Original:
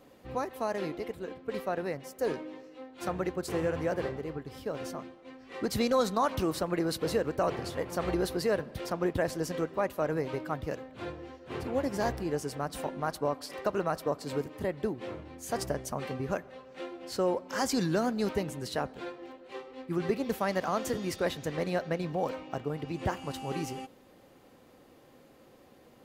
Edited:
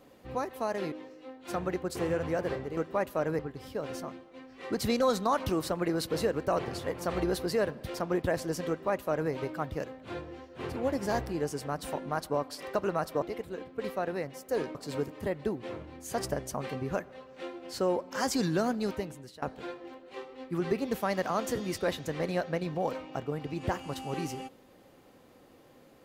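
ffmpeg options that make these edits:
-filter_complex "[0:a]asplit=7[s0][s1][s2][s3][s4][s5][s6];[s0]atrim=end=0.922[s7];[s1]atrim=start=2.448:end=4.302[s8];[s2]atrim=start=9.598:end=10.222[s9];[s3]atrim=start=4.298:end=14.132[s10];[s4]atrim=start=0.918:end=2.452[s11];[s5]atrim=start=14.128:end=18.8,asetpts=PTS-STARTPTS,afade=t=out:st=3.972:d=0.7:silence=0.0944061[s12];[s6]atrim=start=18.8,asetpts=PTS-STARTPTS,afade=t=in:d=0.004:c=hsin:silence=0.0944061[s13];[s7][s8]acrossfade=d=0.004:c1=hsin:c2=hsin[s14];[s14][s9]acrossfade=d=0.004:c1=hsin:c2=hsin[s15];[s15][s10]acrossfade=d=0.004:c1=hsin:c2=hsin[s16];[s16][s11]acrossfade=d=0.004:c1=hsin:c2=hsin[s17];[s12][s13]concat=n=2:v=0:a=1[s18];[s17][s18]acrossfade=d=0.004:c1=hsin:c2=hsin"

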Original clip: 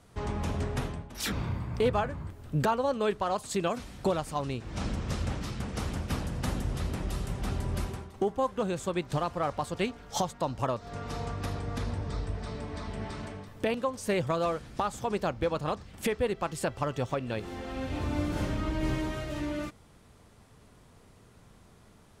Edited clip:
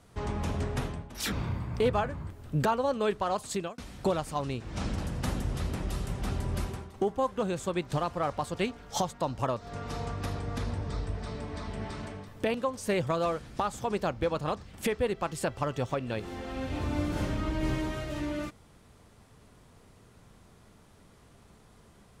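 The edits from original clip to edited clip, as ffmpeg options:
-filter_complex "[0:a]asplit=3[s0][s1][s2];[s0]atrim=end=3.78,asetpts=PTS-STARTPTS,afade=t=out:st=3.51:d=0.27[s3];[s1]atrim=start=3.78:end=4.982,asetpts=PTS-STARTPTS,afade=t=in:d=0.004:c=hsin[s4];[s2]atrim=start=6.178[s5];[s3][s4]concat=n=2:v=0:a=1[s6];[s6][s5]acrossfade=d=0.004:c1=hsin:c2=hsin"

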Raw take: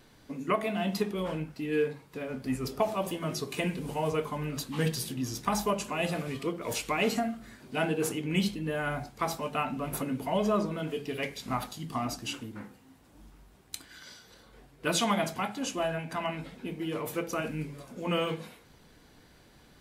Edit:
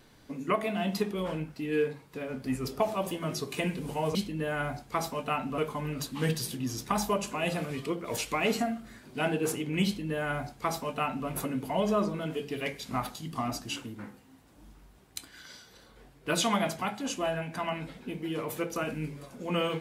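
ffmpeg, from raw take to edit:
-filter_complex "[0:a]asplit=3[s0][s1][s2];[s0]atrim=end=4.152[s3];[s1]atrim=start=8.418:end=9.852[s4];[s2]atrim=start=4.148[s5];[s3][s4]acrossfade=d=0.004:c1=hsin:c2=hsin[s6];[s6][s5]acrossfade=d=0.004:c1=hsin:c2=hsin"

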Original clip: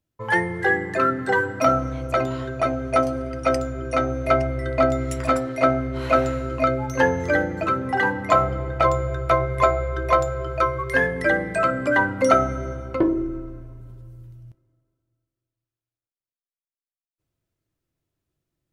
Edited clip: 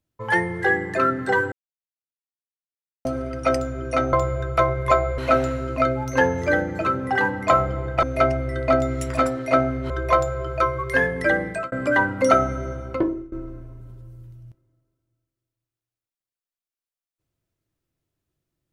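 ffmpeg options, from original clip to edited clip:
-filter_complex "[0:a]asplit=9[s0][s1][s2][s3][s4][s5][s6][s7][s8];[s0]atrim=end=1.52,asetpts=PTS-STARTPTS,afade=t=out:st=1.516:d=0.004:c=hsin[s9];[s1]atrim=start=1.52:end=3.05,asetpts=PTS-STARTPTS,volume=0[s10];[s2]atrim=start=3.05:end=4.132,asetpts=PTS-STARTPTS,afade=t=in:d=0.004:c=hsin[s11];[s3]atrim=start=8.848:end=9.902[s12];[s4]atrim=start=5.998:end=8.852[s13];[s5]atrim=start=4.128:end=6.002[s14];[s6]atrim=start=9.898:end=11.72,asetpts=PTS-STARTPTS,afade=t=out:st=1.572:d=0.25[s15];[s7]atrim=start=11.72:end=13.32,asetpts=PTS-STARTPTS,afade=t=in:d=0.004:c=hsin,afade=t=out:st=1.2:d=0.4:silence=0.1[s16];[s8]atrim=start=13.32,asetpts=PTS-STARTPTS,afade=t=in:d=0.004:c=hsin:silence=0.1[s17];[s9][s10][s11]concat=n=3:v=0:a=1[s18];[s18][s12]acrossfade=d=0.004:c1=hsin:c2=hsin[s19];[s19][s13]acrossfade=d=0.004:c1=hsin:c2=hsin[s20];[s20][s14]acrossfade=d=0.004:c1=hsin:c2=hsin[s21];[s15][s16][s17]concat=n=3:v=0:a=1[s22];[s21][s22]acrossfade=d=0.004:c1=hsin:c2=hsin"

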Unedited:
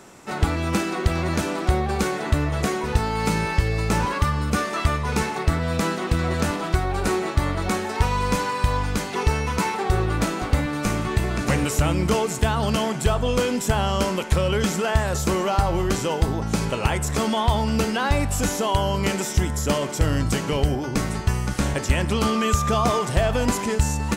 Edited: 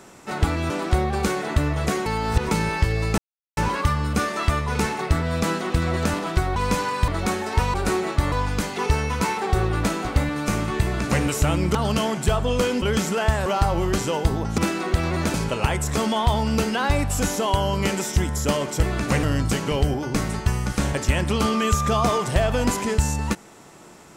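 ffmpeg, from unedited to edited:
-filter_complex "[0:a]asplit=16[s0][s1][s2][s3][s4][s5][s6][s7][s8][s9][s10][s11][s12][s13][s14][s15];[s0]atrim=end=0.702[s16];[s1]atrim=start=1.458:end=2.822[s17];[s2]atrim=start=2.818:end=3.272,asetpts=PTS-STARTPTS,areverse[s18];[s3]atrim=start=3.268:end=3.94,asetpts=PTS-STARTPTS,afade=t=out:st=0.668:d=0.004:c=hsin,apad=pad_dur=0.39[s19];[s4]atrim=start=3.94:end=6.932,asetpts=PTS-STARTPTS,afade=t=in:d=0.004:c=hsin[s20];[s5]atrim=start=8.168:end=8.692[s21];[s6]atrim=start=7.508:end=8.172[s22];[s7]atrim=start=6.928:end=7.512[s23];[s8]atrim=start=8.688:end=12.122[s24];[s9]atrim=start=12.528:end=13.602[s25];[s10]atrim=start=14.488:end=15.132[s26];[s11]atrim=start=15.428:end=16.552[s27];[s12]atrim=start=0.698:end=1.462[s28];[s13]atrim=start=16.548:end=20.042[s29];[s14]atrim=start=11.208:end=11.612[s30];[s15]atrim=start=20.038[s31];[s16][s17]acrossfade=d=0.004:c1=hsin:c2=hsin[s32];[s32][s18]acrossfade=d=0.004:c1=hsin:c2=hsin[s33];[s19][s20]concat=n=2:v=0:a=1[s34];[s33][s34]acrossfade=d=0.004:c1=hsin:c2=hsin[s35];[s35][s21]acrossfade=d=0.004:c1=hsin:c2=hsin[s36];[s36][s22]acrossfade=d=0.004:c1=hsin:c2=hsin[s37];[s37][s23]acrossfade=d=0.004:c1=hsin:c2=hsin[s38];[s38][s24]acrossfade=d=0.004:c1=hsin:c2=hsin[s39];[s39][s25]acrossfade=d=0.004:c1=hsin:c2=hsin[s40];[s40][s26]acrossfade=d=0.004:c1=hsin:c2=hsin[s41];[s41][s27]acrossfade=d=0.004:c1=hsin:c2=hsin[s42];[s42][s28]acrossfade=d=0.004:c1=hsin:c2=hsin[s43];[s43][s29]acrossfade=d=0.004:c1=hsin:c2=hsin[s44];[s44][s30]acrossfade=d=0.004:c1=hsin:c2=hsin[s45];[s45][s31]acrossfade=d=0.004:c1=hsin:c2=hsin"

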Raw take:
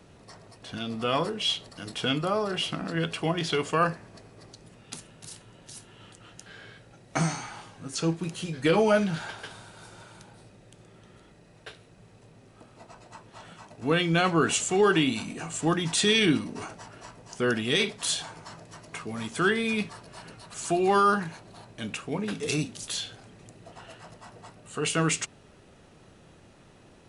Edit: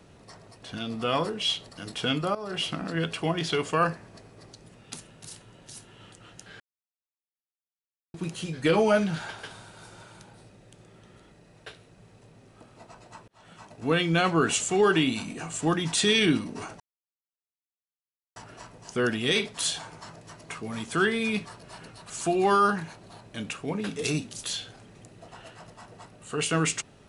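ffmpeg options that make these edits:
-filter_complex "[0:a]asplit=6[s0][s1][s2][s3][s4][s5];[s0]atrim=end=2.35,asetpts=PTS-STARTPTS,afade=t=out:st=2.346:d=0.004:c=hsin:silence=0.149624[s6];[s1]atrim=start=2.35:end=6.6,asetpts=PTS-STARTPTS,afade=t=in:d=0.26:silence=0.149624,afade=t=out:st=4.246:d=0.004:c=hsin[s7];[s2]atrim=start=6.6:end=8.14,asetpts=PTS-STARTPTS,volume=0[s8];[s3]atrim=start=8.14:end=13.28,asetpts=PTS-STARTPTS,afade=t=in:d=0.004:c=hsin,afade=t=out:st=5.136:d=0.004:c=hsin[s9];[s4]atrim=start=13.28:end=16.8,asetpts=PTS-STARTPTS,afade=t=in:d=0.34,afade=t=out:st=3.516:d=0.004:c=hsin,apad=pad_dur=1.56[s10];[s5]atrim=start=16.8,asetpts=PTS-STARTPTS,afade=t=in:d=0.004:c=hsin[s11];[s6][s7][s8][s9][s10][s11]concat=n=6:v=0:a=1"

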